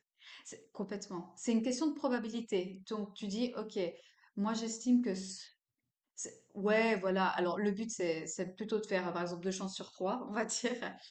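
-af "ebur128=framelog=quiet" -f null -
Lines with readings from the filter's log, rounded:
Integrated loudness:
  I:         -36.2 LUFS
  Threshold: -46.6 LUFS
Loudness range:
  LRA:         3.3 LU
  Threshold: -56.3 LUFS
  LRA low:   -37.9 LUFS
  LRA high:  -34.6 LUFS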